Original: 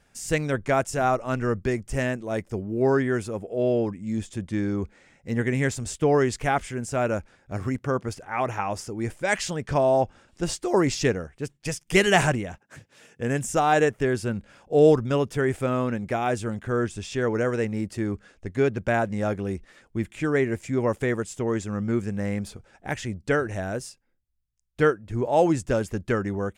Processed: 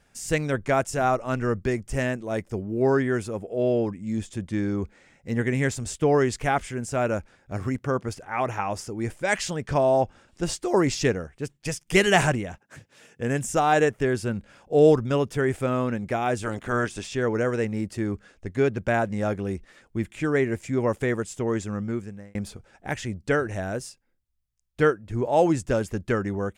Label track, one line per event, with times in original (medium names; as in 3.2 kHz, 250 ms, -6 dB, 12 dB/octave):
16.420000	17.060000	spectral peaks clipped ceiling under each frame's peak by 14 dB
21.680000	22.350000	fade out